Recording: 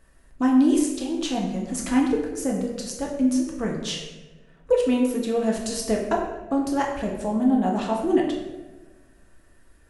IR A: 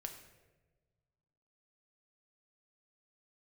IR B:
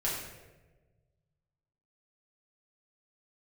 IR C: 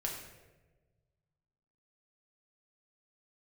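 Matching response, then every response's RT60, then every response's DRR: C; 1.3, 1.2, 1.2 seconds; 4.0, −7.0, −1.5 decibels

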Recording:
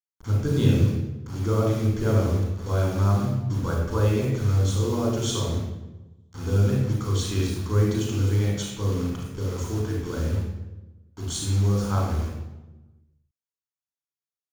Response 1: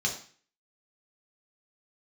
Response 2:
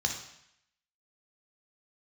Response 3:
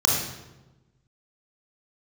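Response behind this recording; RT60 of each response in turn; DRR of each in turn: 3; 0.45, 0.75, 1.1 seconds; −1.0, 1.5, −2.5 decibels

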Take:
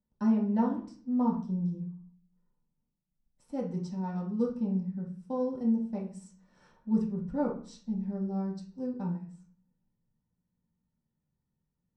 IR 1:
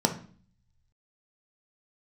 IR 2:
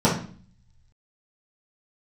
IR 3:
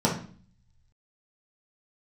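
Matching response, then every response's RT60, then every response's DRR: 3; 0.45, 0.45, 0.45 seconds; 4.0, −9.0, −4.5 decibels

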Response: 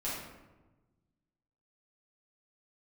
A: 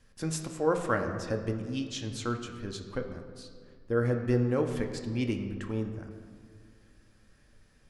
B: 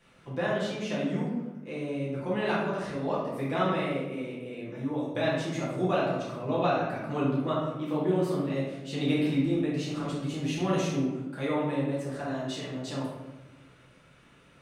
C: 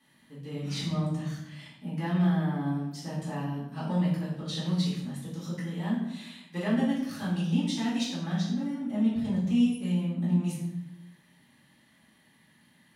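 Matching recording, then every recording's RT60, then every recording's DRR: B; 2.1, 1.2, 0.85 seconds; 3.5, −9.5, −8.5 decibels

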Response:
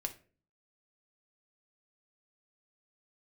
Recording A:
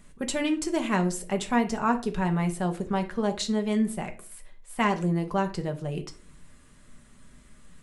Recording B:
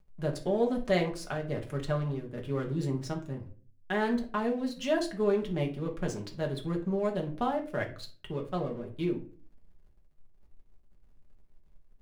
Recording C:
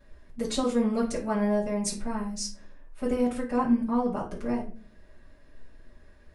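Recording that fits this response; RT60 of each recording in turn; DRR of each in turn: A; 0.40, 0.40, 0.40 seconds; 4.5, 0.0, −9.0 decibels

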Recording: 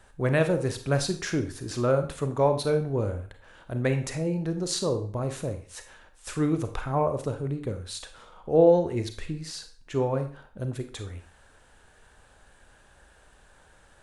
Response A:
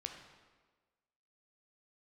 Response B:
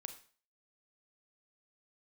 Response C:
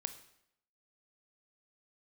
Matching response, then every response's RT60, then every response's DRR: B; 1.4, 0.40, 0.75 seconds; 3.5, 7.5, 10.0 decibels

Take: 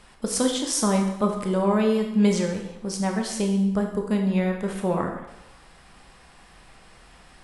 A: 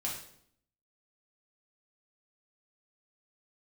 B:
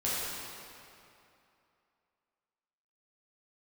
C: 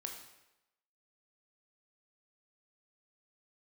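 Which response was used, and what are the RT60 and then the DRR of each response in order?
C; 0.65, 2.7, 0.95 seconds; −4.0, −9.5, 2.0 decibels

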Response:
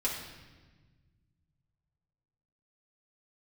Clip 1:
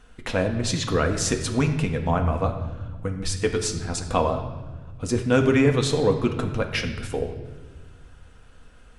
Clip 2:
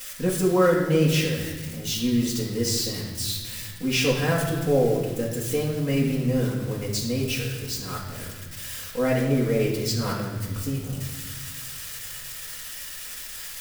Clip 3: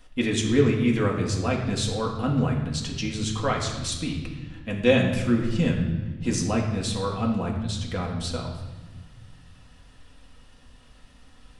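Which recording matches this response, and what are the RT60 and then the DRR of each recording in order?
2; 1.4, 1.3, 1.3 seconds; 3.0, −6.0, −2.0 decibels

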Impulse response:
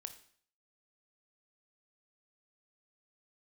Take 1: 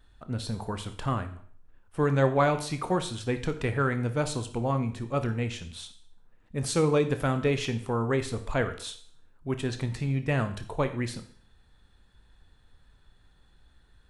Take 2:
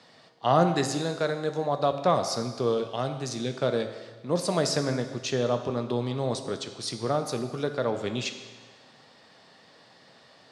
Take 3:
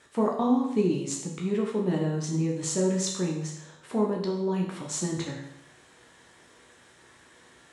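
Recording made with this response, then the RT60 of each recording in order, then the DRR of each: 1; 0.55, 1.4, 0.75 seconds; 8.5, 6.5, −1.0 decibels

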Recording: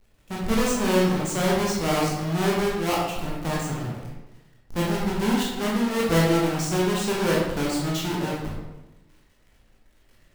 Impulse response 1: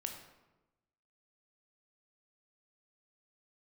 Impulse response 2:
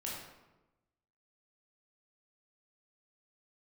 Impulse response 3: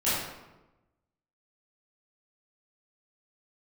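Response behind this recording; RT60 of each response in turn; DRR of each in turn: 2; 1.1, 1.1, 1.0 seconds; 3.5, −5.0, −13.5 decibels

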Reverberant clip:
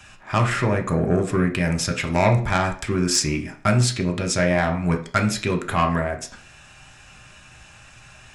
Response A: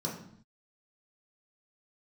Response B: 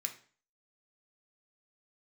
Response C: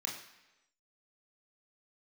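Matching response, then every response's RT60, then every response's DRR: B; non-exponential decay, 0.45 s, 1.0 s; −4.0, 3.5, −2.0 decibels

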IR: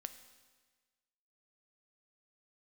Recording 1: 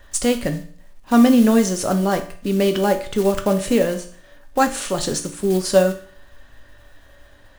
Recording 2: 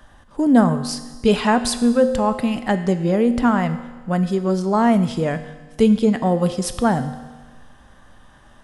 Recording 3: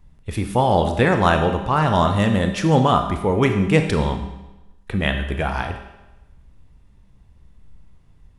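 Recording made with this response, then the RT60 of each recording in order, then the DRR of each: 2; 0.50, 1.4, 1.0 seconds; 5.0, 9.5, 5.0 decibels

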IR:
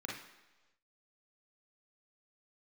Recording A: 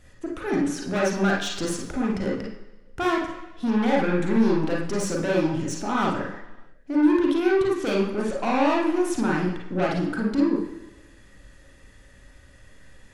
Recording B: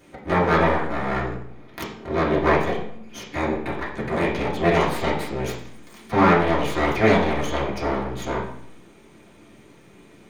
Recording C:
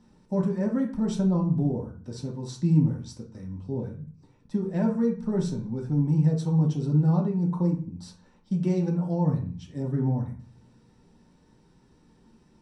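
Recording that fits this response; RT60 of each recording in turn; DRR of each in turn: A; non-exponential decay, 0.65 s, 0.40 s; −3.0, −6.5, −1.5 decibels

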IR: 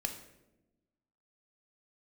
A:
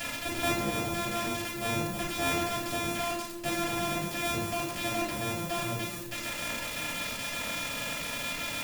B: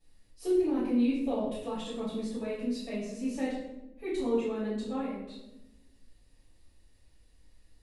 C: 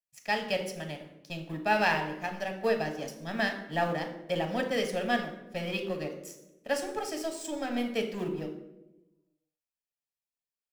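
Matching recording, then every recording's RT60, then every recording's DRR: C; 0.95, 0.95, 1.0 seconds; −3.5, −13.5, 4.5 decibels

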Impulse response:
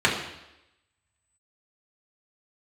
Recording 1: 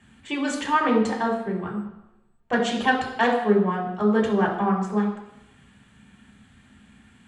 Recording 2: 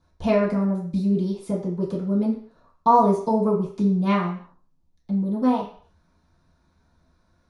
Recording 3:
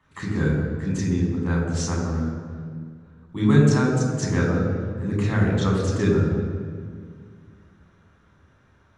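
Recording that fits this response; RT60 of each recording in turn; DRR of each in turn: 1; 0.90, 0.45, 2.0 seconds; −4.5, −10.5, −3.5 decibels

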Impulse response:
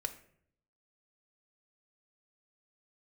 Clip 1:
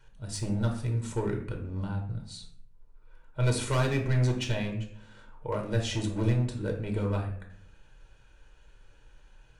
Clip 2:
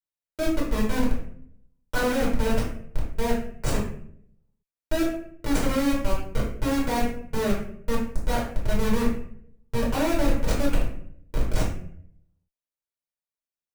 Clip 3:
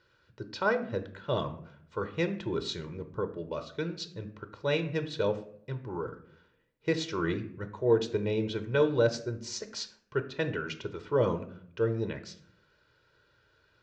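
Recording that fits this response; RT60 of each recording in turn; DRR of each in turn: 3; 0.65, 0.65, 0.65 seconds; 2.0, −6.0, 8.5 decibels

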